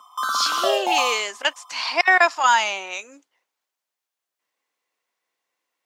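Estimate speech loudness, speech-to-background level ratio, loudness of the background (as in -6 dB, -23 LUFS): -20.5 LUFS, 3.5 dB, -24.0 LUFS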